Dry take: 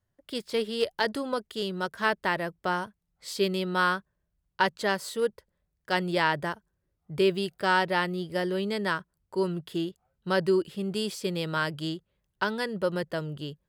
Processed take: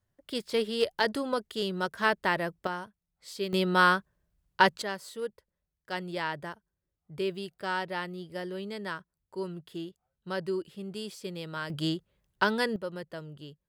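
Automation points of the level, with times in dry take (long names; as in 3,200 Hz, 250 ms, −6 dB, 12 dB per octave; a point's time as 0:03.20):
0 dB
from 0:02.67 −7 dB
from 0:03.53 +3 dB
from 0:04.82 −8 dB
from 0:11.70 +2.5 dB
from 0:12.76 −9 dB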